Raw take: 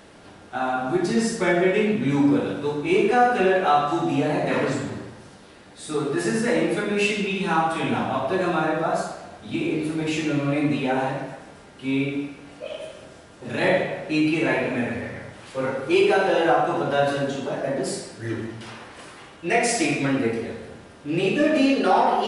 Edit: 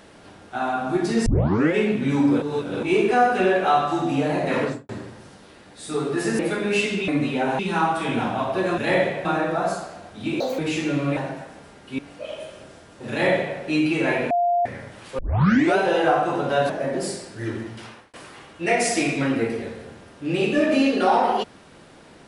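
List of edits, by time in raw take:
1.26 tape start 0.48 s
2.42–2.83 reverse
4.61–4.89 studio fade out
6.39–6.65 cut
9.68–9.99 speed 167%
10.57–11.08 move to 7.34
11.9–12.4 cut
13.52–13.99 copy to 8.53
14.72–15.07 bleep 699 Hz -17 dBFS
15.6 tape start 0.58 s
17.11–17.53 cut
18.52–18.97 fade out equal-power

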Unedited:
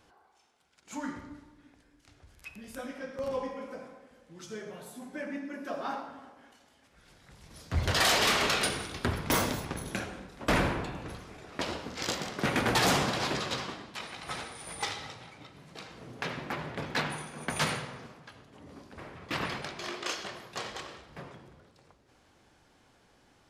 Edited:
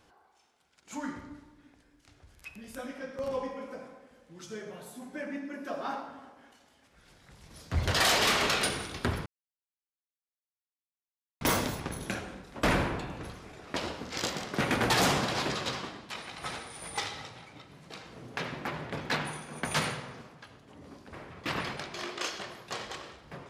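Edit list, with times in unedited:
9.26 insert silence 2.15 s

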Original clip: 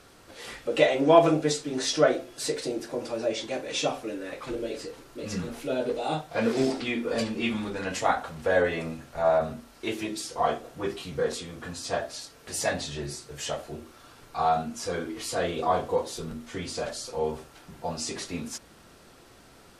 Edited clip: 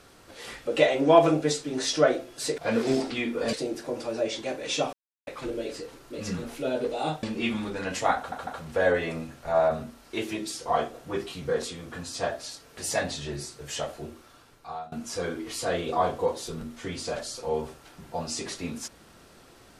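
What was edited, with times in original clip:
3.98–4.32 mute
6.28–7.23 move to 2.58
8.17 stutter 0.15 s, 3 plays
13.77–14.62 fade out linear, to -23.5 dB

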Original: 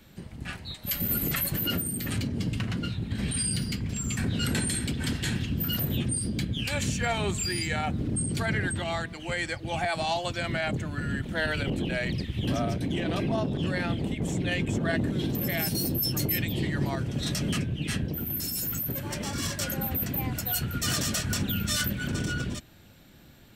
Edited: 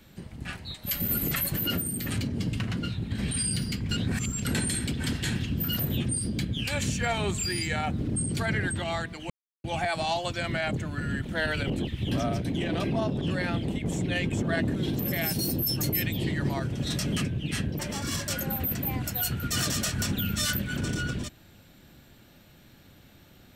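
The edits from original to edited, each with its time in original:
3.91–4.45 reverse
9.3–9.64 mute
11.87–12.23 cut
18.15–19.1 cut

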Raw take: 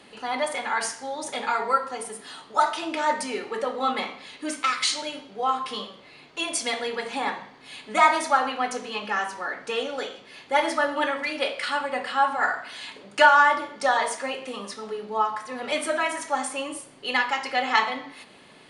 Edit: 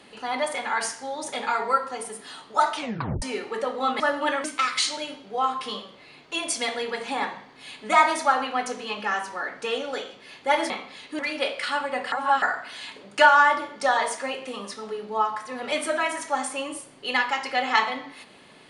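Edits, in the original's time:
2.76 tape stop 0.46 s
4–4.49 swap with 10.75–11.19
12.12–12.42 reverse

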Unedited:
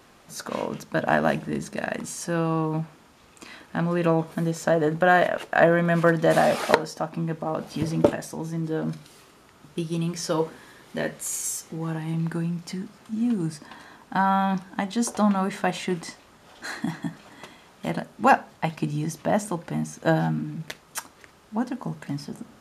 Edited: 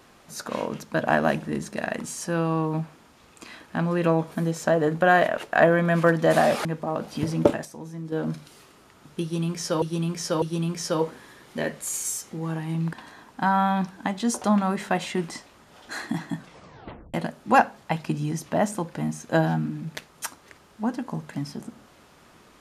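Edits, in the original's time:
6.65–7.24 cut
8.24–8.71 gain -6.5 dB
9.81–10.41 loop, 3 plays
12.32–13.66 cut
17.09 tape stop 0.78 s

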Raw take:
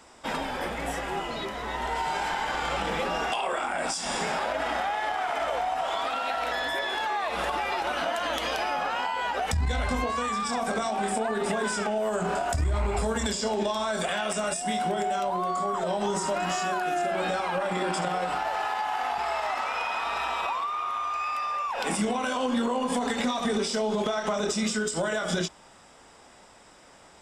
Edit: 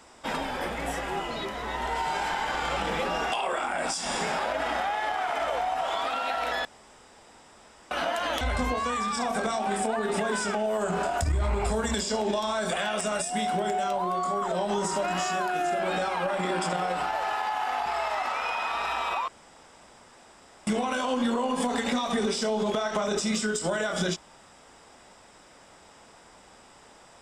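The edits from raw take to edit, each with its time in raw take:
6.65–7.91 room tone
8.41–9.73 cut
20.6–21.99 room tone

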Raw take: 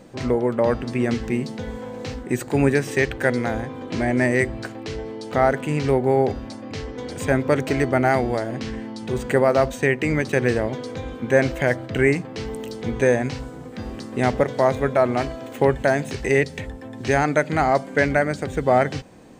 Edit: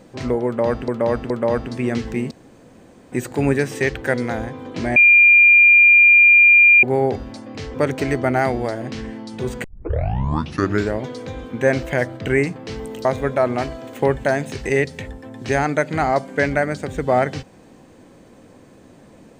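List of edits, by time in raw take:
0.46–0.88 loop, 3 plays
1.47–2.28 room tone
4.12–5.99 bleep 2400 Hz -7 dBFS
6.9–7.43 cut
9.33 tape start 1.34 s
12.74–14.64 cut

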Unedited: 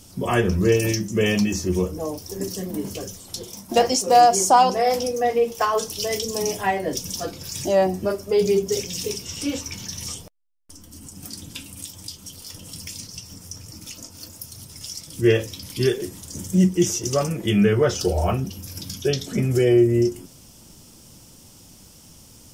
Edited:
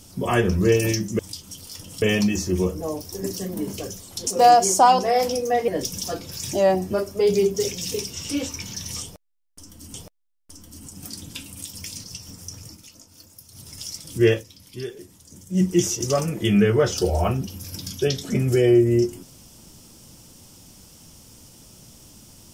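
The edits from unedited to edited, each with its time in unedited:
3.44–3.98 cut
5.39–6.8 cut
10.14–11.06 loop, 2 plays
11.94–12.77 move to 1.19
13.69–14.68 dip -9 dB, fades 0.15 s
15.34–16.68 dip -12 dB, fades 0.13 s

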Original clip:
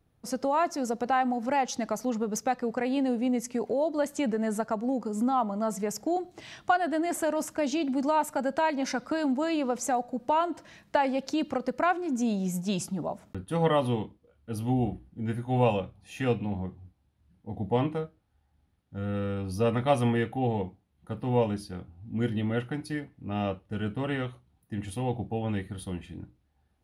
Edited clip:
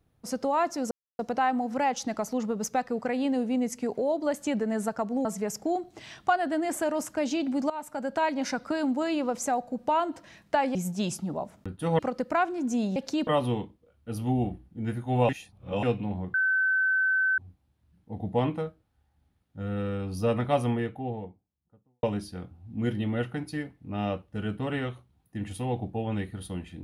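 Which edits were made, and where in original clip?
0.91 insert silence 0.28 s
4.97–5.66 cut
8.11–8.64 fade in, from -15.5 dB
11.16–11.47 swap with 12.44–13.68
15.7–16.24 reverse
16.75 add tone 1530 Hz -21.5 dBFS 1.04 s
19.56–21.4 studio fade out

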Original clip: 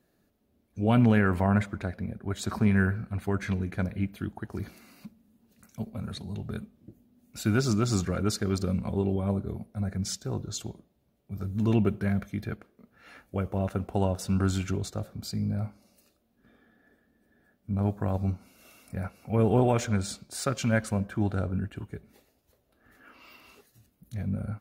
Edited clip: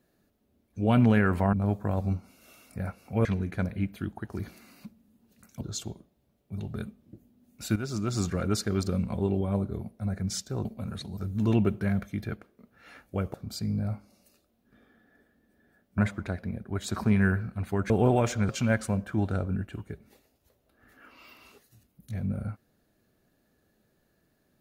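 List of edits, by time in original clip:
1.53–3.45 swap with 17.7–19.42
5.81–6.33 swap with 10.4–11.37
7.51–8.13 fade in linear, from -12 dB
13.54–15.06 cut
20.01–20.52 cut

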